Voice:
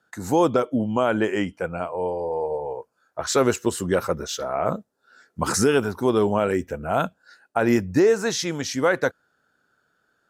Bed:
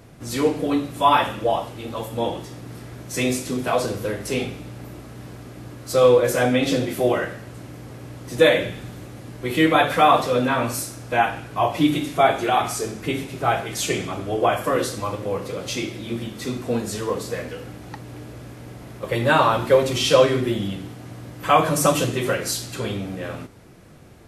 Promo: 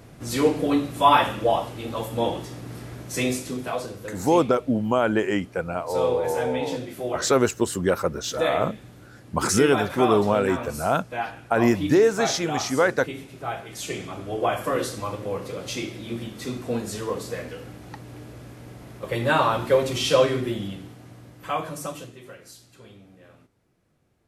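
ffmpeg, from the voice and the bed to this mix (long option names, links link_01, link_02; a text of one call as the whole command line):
ffmpeg -i stem1.wav -i stem2.wav -filter_complex "[0:a]adelay=3950,volume=0dB[link_01];[1:a]volume=6.5dB,afade=type=out:start_time=2.91:duration=0.99:silence=0.316228,afade=type=in:start_time=13.64:duration=0.99:silence=0.473151,afade=type=out:start_time=20.25:duration=1.92:silence=0.133352[link_02];[link_01][link_02]amix=inputs=2:normalize=0" out.wav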